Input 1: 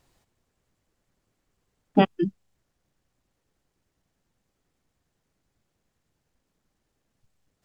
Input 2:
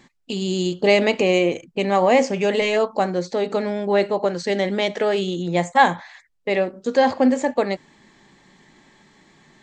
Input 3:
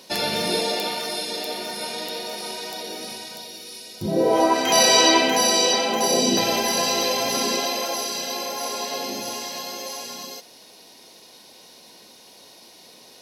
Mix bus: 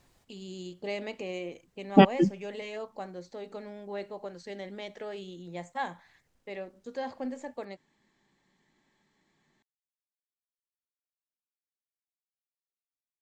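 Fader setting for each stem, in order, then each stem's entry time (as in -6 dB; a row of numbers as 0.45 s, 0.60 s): +1.5 dB, -19.0 dB, mute; 0.00 s, 0.00 s, mute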